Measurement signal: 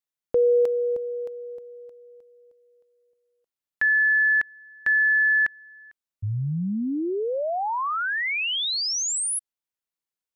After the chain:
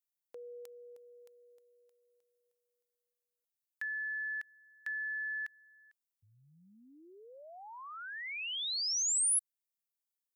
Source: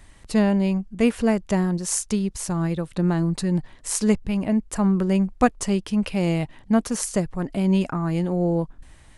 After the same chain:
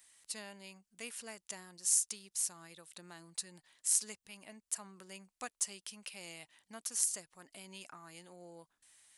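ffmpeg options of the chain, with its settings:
-filter_complex "[0:a]asplit=2[s0][s1];[s1]acompressor=threshold=0.0251:ratio=6:attack=69:release=172:detection=peak,volume=0.708[s2];[s0][s2]amix=inputs=2:normalize=0,aderivative,volume=0.422"

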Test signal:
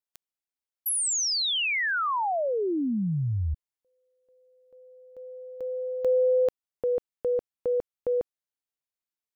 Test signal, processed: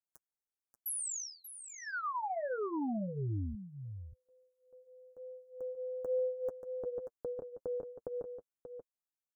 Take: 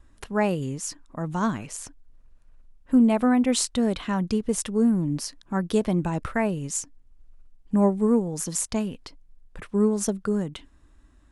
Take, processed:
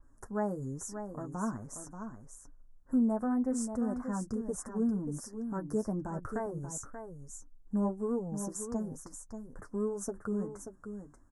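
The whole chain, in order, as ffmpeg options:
-filter_complex "[0:a]flanger=delay=6.9:depth=2.6:regen=-23:speed=1.1:shape=sinusoidal,asplit=2[s0][s1];[s1]acompressor=threshold=0.0112:ratio=6:attack=12:release=131:knee=6:detection=peak,volume=1.12[s2];[s0][s2]amix=inputs=2:normalize=0,asuperstop=centerf=3100:order=8:qfactor=0.72,aecho=1:1:584:0.376,adynamicequalizer=threshold=0.00447:dfrequency=3900:dqfactor=0.7:tfrequency=3900:tqfactor=0.7:attack=5:release=100:ratio=0.375:range=2.5:mode=cutabove:tftype=highshelf,volume=0.355"

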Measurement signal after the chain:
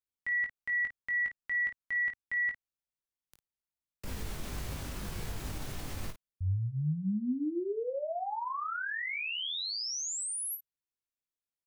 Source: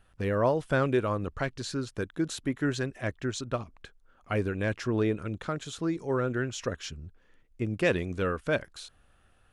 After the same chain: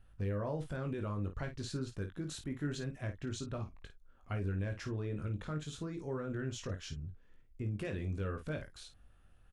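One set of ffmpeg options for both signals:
-af "lowshelf=f=190:g=11.5,alimiter=limit=0.0891:level=0:latency=1:release=34,aecho=1:1:20|53:0.501|0.316,volume=0.355"

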